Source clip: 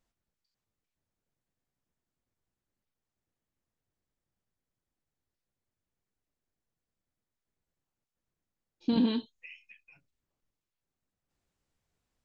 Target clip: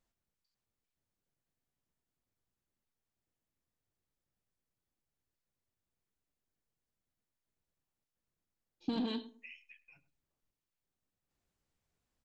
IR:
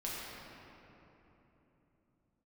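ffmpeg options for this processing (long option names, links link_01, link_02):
-filter_complex "[0:a]asoftclip=type=tanh:threshold=-20.5dB,asettb=1/sr,asplit=3[link_01][link_02][link_03];[link_01]atrim=end=8.894[link_04];[link_02]atrim=start=8.89:end=9.85,asetpts=PTS-STARTPTS,afade=type=in:duration=0.004:curve=qsin,afade=type=out:start_time=0.956:duration=0.004:curve=qsin,equalizer=frequency=100:width=0.52:gain=-10[link_05];[link_03]atrim=start=9.846[link_06];[link_04][link_05]acrossfade=duration=0.004:curve1=hsin:curve2=qsin[link_07];[link_07][link_06]acrossfade=duration=0.004:curve1=qsin:curve2=hsin,asplit=2[link_08][link_09];[link_09]adelay=104,lowpass=frequency=970:poles=1,volume=-14dB,asplit=2[link_10][link_11];[link_11]adelay=104,lowpass=frequency=970:poles=1,volume=0.27,asplit=2[link_12][link_13];[link_13]adelay=104,lowpass=frequency=970:poles=1,volume=0.27[link_14];[link_08][link_10][link_12][link_14]amix=inputs=4:normalize=0,volume=-3dB"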